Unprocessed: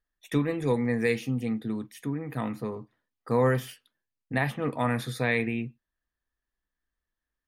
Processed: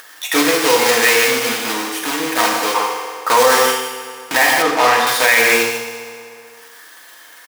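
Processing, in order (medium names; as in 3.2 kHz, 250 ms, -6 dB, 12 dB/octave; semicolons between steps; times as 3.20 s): block-companded coder 3-bit; high-pass 730 Hz 12 dB/octave; delay 153 ms -8.5 dB; reverberation RT60 1.1 s, pre-delay 3 ms, DRR -1 dB; upward compressor, threshold -35 dBFS; 2.74–3.37 s: peaking EQ 1 kHz +11 dB -> +4.5 dB 1.1 oct; 4.62–5.07 s: low-pass 3.1 kHz 6 dB/octave; loudness maximiser +18 dB; trim -1 dB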